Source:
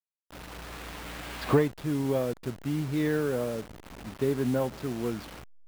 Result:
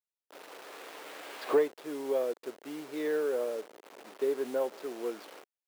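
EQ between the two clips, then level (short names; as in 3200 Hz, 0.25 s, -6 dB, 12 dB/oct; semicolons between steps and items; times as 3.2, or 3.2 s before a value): ladder high-pass 350 Hz, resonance 40%; +3.0 dB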